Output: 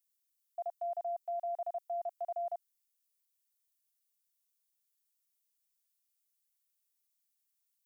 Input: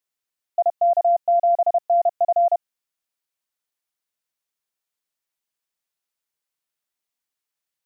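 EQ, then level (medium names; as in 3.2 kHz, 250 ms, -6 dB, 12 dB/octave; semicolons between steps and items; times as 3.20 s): differentiator; +1.0 dB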